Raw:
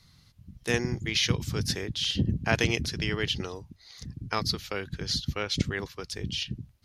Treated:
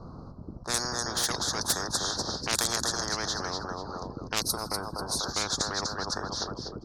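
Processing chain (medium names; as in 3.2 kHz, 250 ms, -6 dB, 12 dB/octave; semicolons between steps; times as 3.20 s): elliptic band-stop 1.3–4.7 kHz, stop band 50 dB; tone controls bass -13 dB, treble +1 dB; level-controlled noise filter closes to 640 Hz, open at -24 dBFS; on a send: feedback delay 246 ms, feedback 26%, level -11.5 dB; on the sum: time-frequency box 4.42–5.19 s, 1.1–8 kHz -18 dB; in parallel at -7 dB: saturation -26 dBFS, distortion -13 dB; on the sum: spectrum-flattening compressor 10:1; trim +6.5 dB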